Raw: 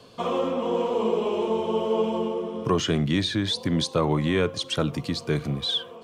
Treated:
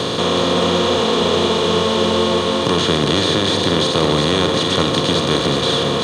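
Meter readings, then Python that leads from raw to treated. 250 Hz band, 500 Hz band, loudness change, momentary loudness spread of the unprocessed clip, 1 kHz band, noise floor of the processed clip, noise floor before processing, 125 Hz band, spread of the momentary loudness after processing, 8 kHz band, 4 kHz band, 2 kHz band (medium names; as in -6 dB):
+8.0 dB, +8.5 dB, +9.5 dB, 4 LU, +11.0 dB, -19 dBFS, -43 dBFS, +6.5 dB, 1 LU, +12.5 dB, +13.0 dB, +12.0 dB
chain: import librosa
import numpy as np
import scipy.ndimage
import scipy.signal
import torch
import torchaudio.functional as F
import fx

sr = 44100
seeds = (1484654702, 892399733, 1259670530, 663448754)

y = fx.bin_compress(x, sr, power=0.2)
y = y + 10.0 ** (-5.5 / 20.0) * np.pad(y, (int(370 * sr / 1000.0), 0))[:len(y)]
y = y * 10.0 ** (-1.0 / 20.0)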